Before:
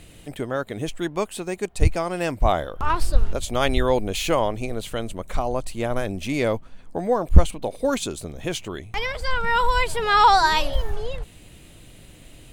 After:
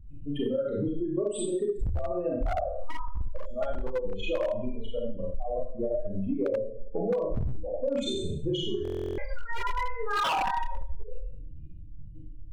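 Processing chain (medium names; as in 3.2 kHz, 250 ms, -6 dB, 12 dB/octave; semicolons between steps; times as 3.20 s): spectral contrast enhancement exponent 3.6; Schroeder reverb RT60 0.54 s, combs from 28 ms, DRR -4.5 dB; wavefolder -9 dBFS; compression 10:1, threshold -25 dBFS, peak gain reduction 14 dB; buffer glitch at 8.83 s, samples 1024, times 14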